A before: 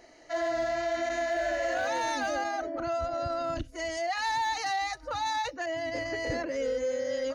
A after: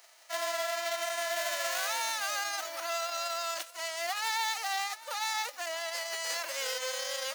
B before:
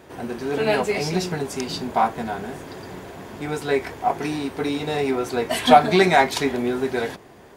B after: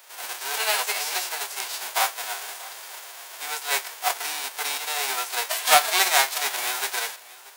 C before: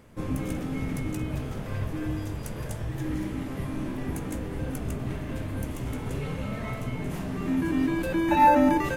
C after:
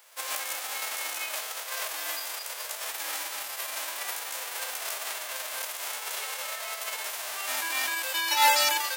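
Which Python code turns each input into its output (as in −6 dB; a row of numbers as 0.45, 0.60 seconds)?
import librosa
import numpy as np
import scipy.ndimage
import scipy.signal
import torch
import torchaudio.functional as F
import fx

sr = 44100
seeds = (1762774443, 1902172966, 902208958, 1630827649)

p1 = fx.envelope_flatten(x, sr, power=0.3)
p2 = scipy.signal.sosfilt(scipy.signal.butter(4, 580.0, 'highpass', fs=sr, output='sos'), p1)
p3 = fx.quant_float(p2, sr, bits=4)
p4 = 10.0 ** (-2.0 / 20.0) * np.tanh(p3 / 10.0 ** (-2.0 / 20.0))
p5 = p4 + fx.echo_single(p4, sr, ms=634, db=-20.0, dry=0)
y = p5 * librosa.db_to_amplitude(-2.5)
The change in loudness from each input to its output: −1.5, −2.0, −0.5 LU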